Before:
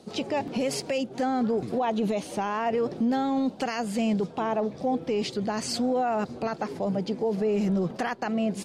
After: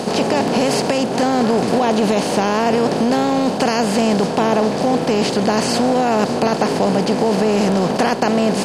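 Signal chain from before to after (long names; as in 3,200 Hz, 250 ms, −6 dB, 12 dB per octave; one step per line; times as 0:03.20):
compressor on every frequency bin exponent 0.4
level +5 dB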